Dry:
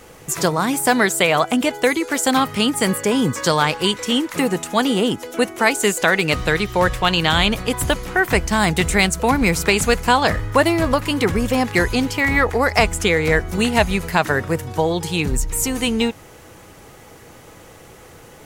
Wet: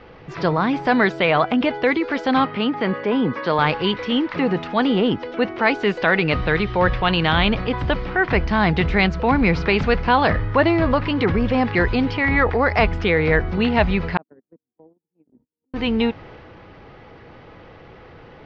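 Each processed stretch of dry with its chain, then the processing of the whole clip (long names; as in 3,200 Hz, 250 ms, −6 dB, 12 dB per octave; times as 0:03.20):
0:02.45–0:03.59: high-pass filter 200 Hz + high-frequency loss of the air 170 metres
0:14.17–0:15.74: noise gate −16 dBFS, range −50 dB + downward compressor 2 to 1, threshold −33 dBFS + four-pole ladder band-pass 290 Hz, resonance 55%
whole clip: Butterworth low-pass 5,100 Hz 48 dB per octave; bass and treble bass +1 dB, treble −13 dB; transient designer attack −3 dB, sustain +3 dB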